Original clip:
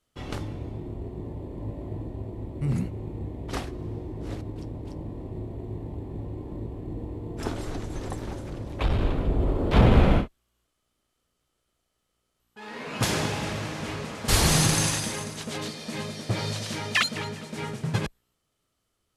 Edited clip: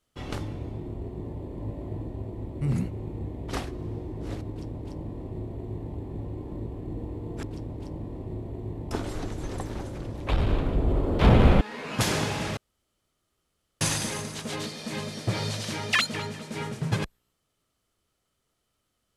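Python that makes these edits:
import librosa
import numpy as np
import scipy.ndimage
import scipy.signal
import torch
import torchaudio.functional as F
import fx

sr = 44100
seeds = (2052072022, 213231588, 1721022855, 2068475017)

y = fx.edit(x, sr, fx.duplicate(start_s=4.48, length_s=1.48, to_s=7.43),
    fx.cut(start_s=10.13, length_s=2.5),
    fx.room_tone_fill(start_s=13.59, length_s=1.24), tone=tone)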